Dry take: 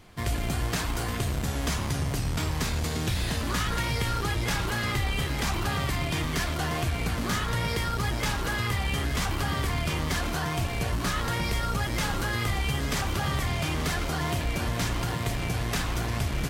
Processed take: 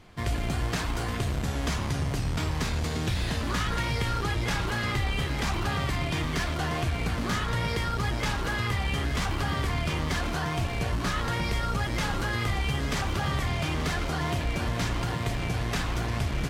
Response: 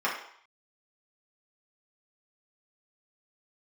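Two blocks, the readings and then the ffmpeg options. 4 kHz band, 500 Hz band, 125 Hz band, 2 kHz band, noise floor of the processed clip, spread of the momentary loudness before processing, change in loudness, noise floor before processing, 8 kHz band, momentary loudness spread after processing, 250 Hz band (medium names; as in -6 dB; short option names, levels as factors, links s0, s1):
-1.5 dB, 0.0 dB, 0.0 dB, -0.5 dB, -31 dBFS, 2 LU, -0.5 dB, -31 dBFS, -4.0 dB, 2 LU, 0.0 dB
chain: -af "highshelf=f=9200:g=-11.5"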